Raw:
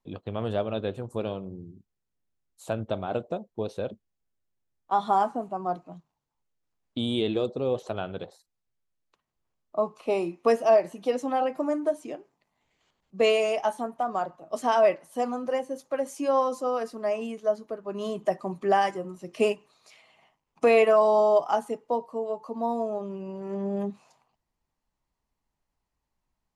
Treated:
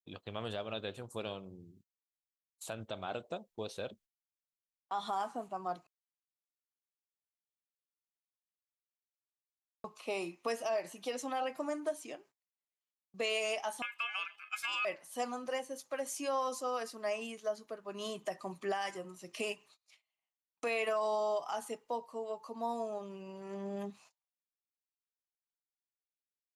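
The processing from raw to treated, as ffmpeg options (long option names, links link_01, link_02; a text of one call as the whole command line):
ffmpeg -i in.wav -filter_complex "[0:a]asettb=1/sr,asplit=3[link_01][link_02][link_03];[link_01]atrim=end=13.824[link_04];[link_02]atrim=start=13.82:end=14.85,asetpts=PTS-STARTPTS,afade=type=in:duration=0.004:curve=qsin,afade=type=out:start_time=1.026:duration=0.004:curve=qsin,aeval=exprs='val(0)*sin(2*PI*1900*n/s)':channel_layout=same[link_05];[link_03]atrim=start=14.846[link_06];[link_04][link_05]acrossfade=duration=0.004:curve1=hsin:curve2=qsin[link_07];[link_07][link_06]acrossfade=duration=0.004:curve1=qsin:curve2=hsin,asplit=3[link_08][link_09][link_10];[link_08]atrim=end=5.87,asetpts=PTS-STARTPTS,afade=type=out:start_time=5.866:duration=0.004:curve=hsin[link_11];[link_09]atrim=start=5.87:end=9.84,asetpts=PTS-STARTPTS,volume=0[link_12];[link_10]atrim=start=9.84,asetpts=PTS-STARTPTS,afade=type=in:duration=0.004:curve=hsin[link_13];[link_11][link_12][link_13]concat=n=3:v=0:a=1,agate=range=-30dB:threshold=-52dB:ratio=16:detection=peak,tiltshelf=frequency=1200:gain=-7.5,alimiter=limit=-21.5dB:level=0:latency=1:release=101,volume=-4.5dB" out.wav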